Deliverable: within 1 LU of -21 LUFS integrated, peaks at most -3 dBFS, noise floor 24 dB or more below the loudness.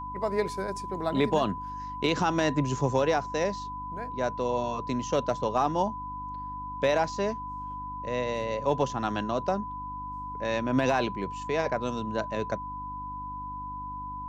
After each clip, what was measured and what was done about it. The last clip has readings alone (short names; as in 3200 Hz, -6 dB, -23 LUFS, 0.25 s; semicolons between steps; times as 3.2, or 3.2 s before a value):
hum 50 Hz; harmonics up to 300 Hz; hum level -41 dBFS; steady tone 1000 Hz; tone level -35 dBFS; loudness -30.0 LUFS; peak -13.0 dBFS; loudness target -21.0 LUFS
-> de-hum 50 Hz, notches 6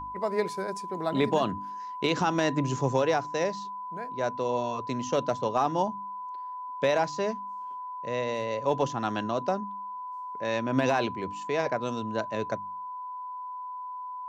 hum none; steady tone 1000 Hz; tone level -35 dBFS
-> notch 1000 Hz, Q 30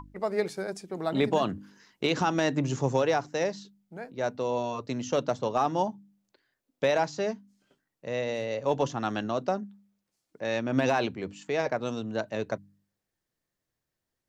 steady tone none; loudness -29.5 LUFS; peak -12.5 dBFS; loudness target -21.0 LUFS
-> gain +8.5 dB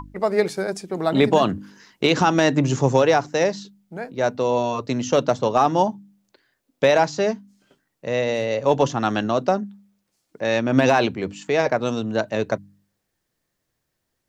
loudness -21.0 LUFS; peak -4.0 dBFS; noise floor -77 dBFS